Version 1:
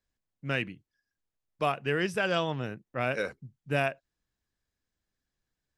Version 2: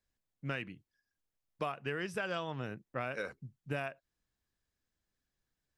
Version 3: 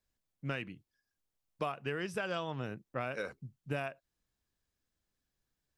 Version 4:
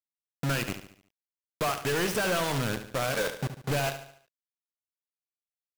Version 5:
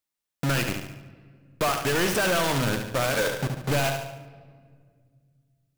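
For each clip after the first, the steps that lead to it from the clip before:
dynamic bell 1.2 kHz, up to +4 dB, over -41 dBFS, Q 1.4; compression 6:1, threshold -32 dBFS, peak gain reduction 11 dB; trim -1.5 dB
peaking EQ 1.8 kHz -2.5 dB; trim +1 dB
in parallel at +1 dB: compression 6:1, threshold -45 dBFS, peak gain reduction 14 dB; on the sum: companded quantiser 2-bit; feedback delay 72 ms, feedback 46%, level -10.5 dB
saturation -29 dBFS, distortion -13 dB; on a send at -13.5 dB: reverberation RT60 2.0 s, pre-delay 3 ms; on the sum: trim +9 dB

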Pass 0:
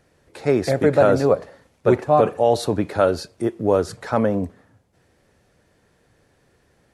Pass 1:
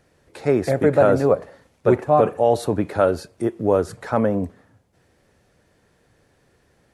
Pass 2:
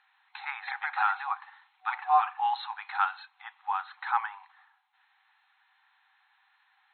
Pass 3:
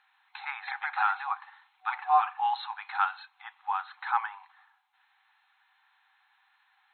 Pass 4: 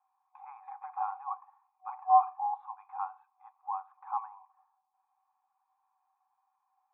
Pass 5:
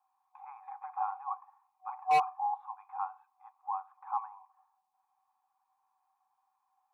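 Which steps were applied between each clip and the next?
dynamic bell 4.6 kHz, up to -7 dB, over -45 dBFS, Q 1
FFT band-pass 750–4200 Hz
band-stop 1.9 kHz, Q 29
cascade formant filter a; trim +3.5 dB
hard clipper -21 dBFS, distortion -10 dB

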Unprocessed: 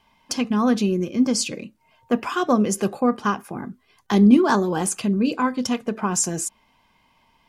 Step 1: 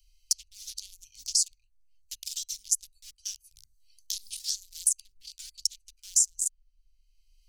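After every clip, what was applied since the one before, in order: local Wiener filter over 25 samples; inverse Chebyshev band-stop 180–1100 Hz, stop band 80 dB; three bands compressed up and down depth 70%; trim +7.5 dB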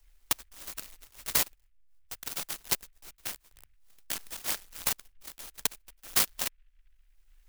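distance through air 50 m; delay time shaken by noise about 2.1 kHz, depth 0.44 ms; trim +3 dB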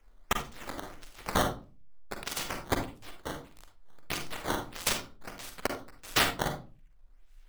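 decimation with a swept rate 10×, swing 160% 1.6 Hz; hard clipper -17.5 dBFS, distortion -14 dB; reverberation RT60 0.35 s, pre-delay 41 ms, DRR 4.5 dB

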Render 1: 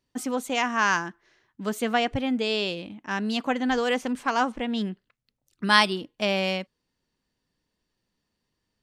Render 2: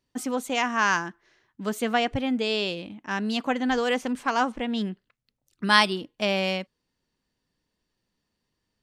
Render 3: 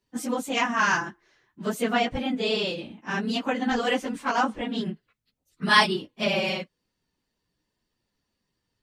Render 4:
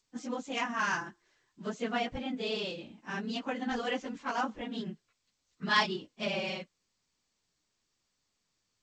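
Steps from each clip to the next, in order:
no audible change
phase randomisation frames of 50 ms
trim -8.5 dB; G.722 64 kbps 16 kHz

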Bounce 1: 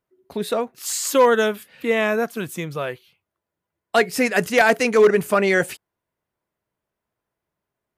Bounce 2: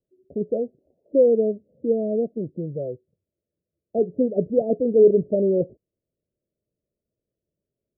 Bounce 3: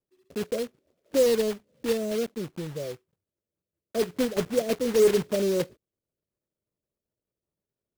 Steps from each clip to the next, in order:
steep low-pass 610 Hz 72 dB/octave
block-companded coder 3-bit; trim -5 dB

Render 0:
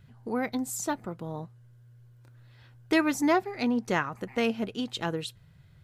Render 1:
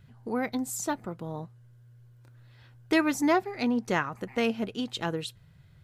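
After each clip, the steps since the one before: no audible change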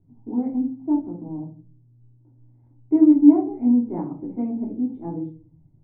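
cascade formant filter u; simulated room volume 220 m³, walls furnished, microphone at 3.1 m; trim +4 dB

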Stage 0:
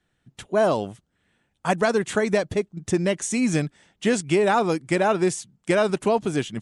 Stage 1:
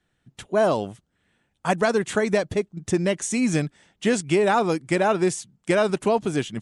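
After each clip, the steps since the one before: no audible change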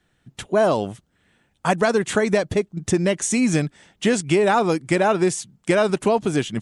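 compression 1.5:1, threshold -27 dBFS, peak gain reduction 4.5 dB; trim +6 dB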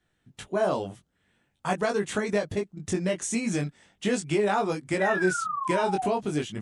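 painted sound fall, 5.00–6.07 s, 700–2000 Hz -23 dBFS; chorus 0.45 Hz, delay 19.5 ms, depth 2.4 ms; trim -4.5 dB

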